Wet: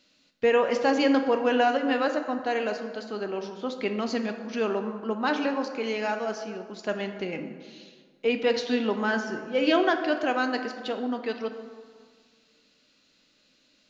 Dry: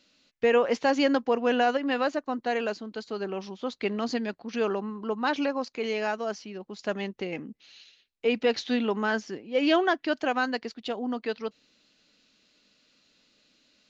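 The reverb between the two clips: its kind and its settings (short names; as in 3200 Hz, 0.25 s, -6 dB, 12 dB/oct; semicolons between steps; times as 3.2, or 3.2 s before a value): plate-style reverb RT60 1.8 s, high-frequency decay 0.5×, DRR 6 dB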